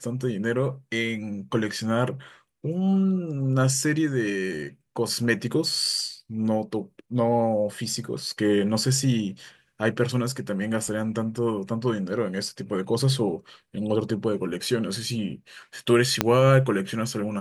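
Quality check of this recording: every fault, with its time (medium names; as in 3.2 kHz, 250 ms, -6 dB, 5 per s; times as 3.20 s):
16.21 s: pop -3 dBFS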